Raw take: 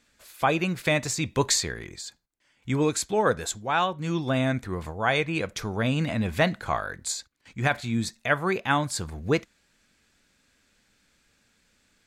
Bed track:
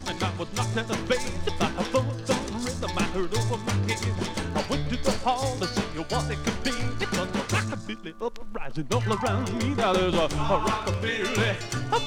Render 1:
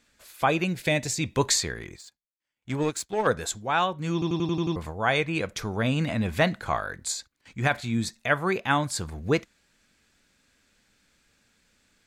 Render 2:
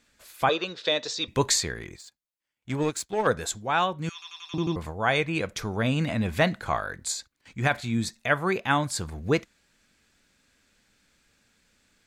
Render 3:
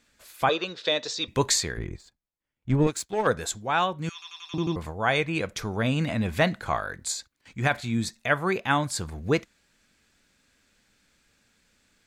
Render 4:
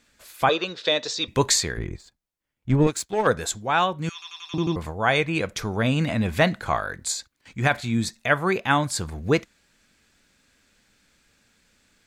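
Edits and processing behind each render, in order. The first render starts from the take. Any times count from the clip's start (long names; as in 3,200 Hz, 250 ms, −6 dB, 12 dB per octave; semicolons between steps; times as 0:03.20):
0:00.64–0:01.21: parametric band 1,200 Hz −12.5 dB 0.53 octaves; 0:01.97–0:03.27: power curve on the samples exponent 1.4; 0:04.13: stutter in place 0.09 s, 7 plays
0:00.49–0:01.28: loudspeaker in its box 440–5,600 Hz, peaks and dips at 470 Hz +7 dB, 740 Hz −5 dB, 1,200 Hz +8 dB, 2,200 Hz −10 dB, 3,700 Hz +10 dB, 5,400 Hz +3 dB; 0:04.09–0:04.54: high-pass filter 1,400 Hz 24 dB per octave
0:01.77–0:02.87: spectral tilt −3 dB per octave
level +3 dB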